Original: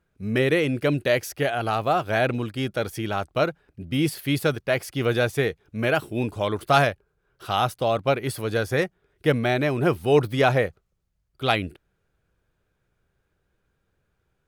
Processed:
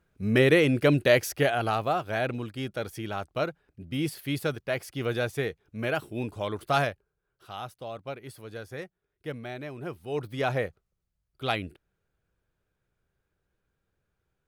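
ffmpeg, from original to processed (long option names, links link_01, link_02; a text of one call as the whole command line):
ffmpeg -i in.wav -af "volume=10dB,afade=type=out:start_time=1.32:duration=0.7:silence=0.421697,afade=type=out:start_time=6.84:duration=0.65:silence=0.354813,afade=type=in:start_time=10.07:duration=0.57:silence=0.354813" out.wav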